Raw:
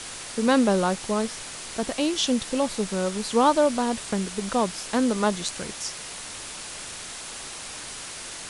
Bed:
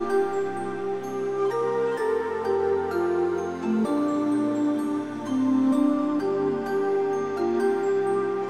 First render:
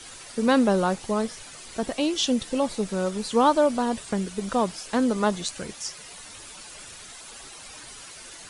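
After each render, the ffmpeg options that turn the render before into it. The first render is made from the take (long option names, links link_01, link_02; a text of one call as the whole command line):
ffmpeg -i in.wav -af "afftdn=noise_reduction=10:noise_floor=-38" out.wav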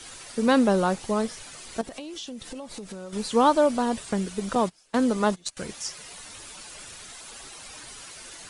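ffmpeg -i in.wav -filter_complex "[0:a]asettb=1/sr,asplit=3[link_01][link_02][link_03];[link_01]atrim=end=1.814[link_04];[link_02]atrim=start=1.81:end=3.13,asetpts=PTS-STARTPTS,afade=type=in:duration=0.004:curve=qsin,afade=type=out:start_time=1.316:duration=0.004:curve=qsin,acompressor=threshold=-34dB:ratio=10:attack=3.2:release=140:knee=1:detection=peak[link_05];[link_03]atrim=start=3.126[link_06];[link_04][link_05]acrossfade=duration=0.004:curve1=hsin:curve2=qsin[link_07];[link_07][link_06]acrossfade=duration=0.004:curve1=qsin:curve2=hsin,asettb=1/sr,asplit=3[link_08][link_09][link_10];[link_08]atrim=end=4.554[link_11];[link_09]atrim=start=4.55:end=5.57,asetpts=PTS-STARTPTS,afade=type=in:duration=0.004:curve=qsin,afade=type=out:start_time=1.016:duration=0.004:curve=qsin,agate=range=-22dB:threshold=-30dB:ratio=16:release=100:detection=peak[link_12];[link_10]atrim=start=5.566[link_13];[link_11][link_12]acrossfade=duration=0.004:curve1=hsin:curve2=qsin[link_14];[link_14][link_13]acrossfade=duration=0.004:curve1=qsin:curve2=hsin" out.wav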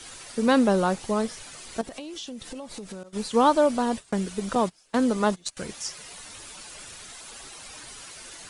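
ffmpeg -i in.wav -filter_complex "[0:a]asettb=1/sr,asplit=3[link_01][link_02][link_03];[link_01]atrim=end=3.034[link_04];[link_02]atrim=start=3.03:end=4.19,asetpts=PTS-STARTPTS,afade=type=in:duration=0.004:curve=qsin,afade=type=out:start_time=1.156:duration=0.004:curve=qsin,agate=range=-33dB:threshold=-32dB:ratio=3:release=100:detection=peak[link_05];[link_03]atrim=start=4.186[link_06];[link_04][link_05]acrossfade=duration=0.004:curve1=hsin:curve2=qsin[link_07];[link_07][link_06]acrossfade=duration=0.004:curve1=qsin:curve2=hsin" out.wav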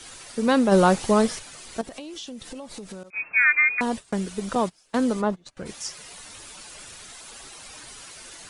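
ffmpeg -i in.wav -filter_complex "[0:a]asplit=3[link_01][link_02][link_03];[link_01]afade=type=out:start_time=0.71:duration=0.02[link_04];[link_02]acontrast=74,afade=type=in:start_time=0.71:duration=0.02,afade=type=out:start_time=1.38:duration=0.02[link_05];[link_03]afade=type=in:start_time=1.38:duration=0.02[link_06];[link_04][link_05][link_06]amix=inputs=3:normalize=0,asettb=1/sr,asplit=3[link_07][link_08][link_09];[link_07]atrim=end=3.104[link_10];[link_08]atrim=start=3.1:end=3.81,asetpts=PTS-STARTPTS,afade=type=in:duration=0.004:curve=qsin,afade=type=out:start_time=0.706:duration=0.004:curve=qsin,lowpass=frequency=2300:width_type=q:width=0.5098,lowpass=frequency=2300:width_type=q:width=0.6013,lowpass=frequency=2300:width_type=q:width=0.9,lowpass=frequency=2300:width_type=q:width=2.563,afreqshift=-2700[link_11];[link_09]atrim=start=3.806[link_12];[link_10][link_11]acrossfade=duration=0.004:curve1=hsin:curve2=qsin[link_13];[link_13][link_12]acrossfade=duration=0.004:curve1=qsin:curve2=hsin,asplit=3[link_14][link_15][link_16];[link_14]afade=type=out:start_time=5.2:duration=0.02[link_17];[link_15]lowpass=frequency=1100:poles=1,afade=type=in:start_time=5.2:duration=0.02,afade=type=out:start_time=5.65:duration=0.02[link_18];[link_16]afade=type=in:start_time=5.65:duration=0.02[link_19];[link_17][link_18][link_19]amix=inputs=3:normalize=0" out.wav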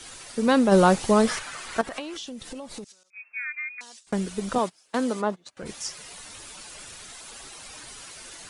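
ffmpeg -i in.wav -filter_complex "[0:a]asettb=1/sr,asplit=3[link_01][link_02][link_03];[link_01]atrim=end=1.274[link_04];[link_02]atrim=start=1.27:end=2.17,asetpts=PTS-STARTPTS,afade=type=in:duration=0.004:curve=qsin,afade=type=out:start_time=0.896:duration=0.004:curve=qsin,equalizer=frequency=1400:width_type=o:width=1.9:gain=12.5[link_05];[link_03]atrim=start=2.166[link_06];[link_04][link_05]acrossfade=duration=0.004:curve1=hsin:curve2=qsin[link_07];[link_07][link_06]acrossfade=duration=0.004:curve1=qsin:curve2=hsin,asettb=1/sr,asplit=3[link_08][link_09][link_10];[link_08]atrim=end=2.844[link_11];[link_09]atrim=start=2.84:end=4.07,asetpts=PTS-STARTPTS,afade=type=in:duration=0.004:curve=qsin,afade=type=out:start_time=1.226:duration=0.004:curve=qsin,bandpass=frequency=5900:width_type=q:width=1.9[link_12];[link_10]atrim=start=4.066[link_13];[link_11][link_12]acrossfade=duration=0.004:curve1=hsin:curve2=qsin[link_14];[link_14][link_13]acrossfade=duration=0.004:curve1=qsin:curve2=hsin,asettb=1/sr,asplit=3[link_15][link_16][link_17];[link_15]atrim=end=4.584[link_18];[link_16]atrim=start=4.58:end=5.63,asetpts=PTS-STARTPTS,afade=type=in:duration=0.004:curve=qsin,afade=type=out:start_time=1.046:duration=0.004:curve=qsin,highpass=frequency=310:poles=1[link_19];[link_17]atrim=start=5.626[link_20];[link_18][link_19]acrossfade=duration=0.004:curve1=hsin:curve2=qsin[link_21];[link_21][link_20]acrossfade=duration=0.004:curve1=qsin:curve2=hsin" out.wav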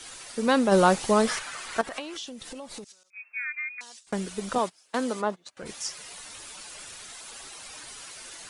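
ffmpeg -i in.wav -af "lowshelf=frequency=330:gain=-6" out.wav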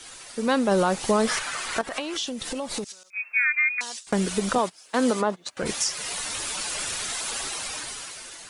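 ffmpeg -i in.wav -af "dynaudnorm=framelen=180:gausssize=11:maxgain=13dB,alimiter=limit=-12.5dB:level=0:latency=1:release=227" out.wav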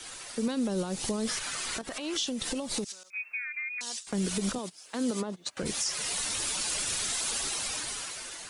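ffmpeg -i in.wav -filter_complex "[0:a]alimiter=limit=-19.5dB:level=0:latency=1:release=79,acrossover=split=400|3000[link_01][link_02][link_03];[link_02]acompressor=threshold=-40dB:ratio=6[link_04];[link_01][link_04][link_03]amix=inputs=3:normalize=0" out.wav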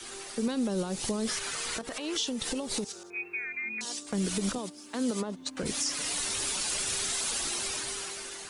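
ffmpeg -i in.wav -i bed.wav -filter_complex "[1:a]volume=-25.5dB[link_01];[0:a][link_01]amix=inputs=2:normalize=0" out.wav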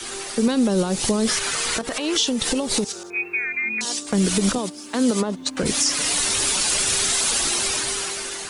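ffmpeg -i in.wav -af "volume=10.5dB" out.wav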